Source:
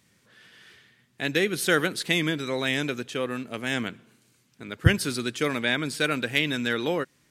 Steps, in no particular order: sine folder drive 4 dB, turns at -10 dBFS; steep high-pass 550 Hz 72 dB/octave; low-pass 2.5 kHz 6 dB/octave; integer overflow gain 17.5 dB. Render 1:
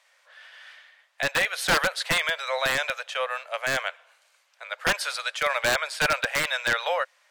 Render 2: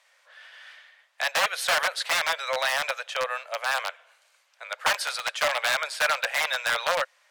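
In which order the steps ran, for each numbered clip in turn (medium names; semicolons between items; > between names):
steep high-pass > integer overflow > sine folder > low-pass; integer overflow > steep high-pass > sine folder > low-pass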